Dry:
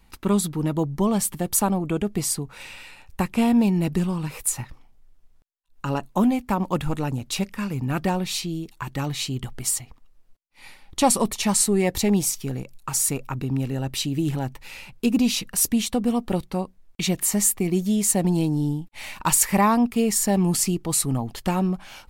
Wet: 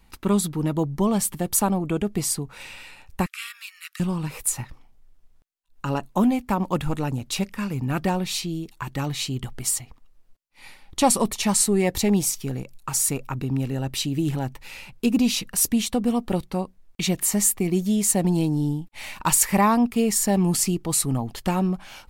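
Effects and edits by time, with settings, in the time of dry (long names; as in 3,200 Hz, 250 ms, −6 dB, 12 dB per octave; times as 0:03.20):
0:03.26–0:04.00: Butterworth high-pass 1,200 Hz 96 dB per octave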